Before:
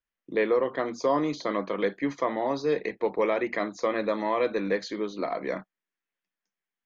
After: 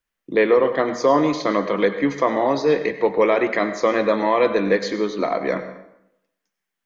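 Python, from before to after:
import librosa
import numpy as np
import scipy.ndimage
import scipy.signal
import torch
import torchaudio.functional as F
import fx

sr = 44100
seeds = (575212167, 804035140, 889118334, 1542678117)

y = fx.rev_plate(x, sr, seeds[0], rt60_s=0.82, hf_ratio=0.7, predelay_ms=80, drr_db=10.0)
y = F.gain(torch.from_numpy(y), 8.0).numpy()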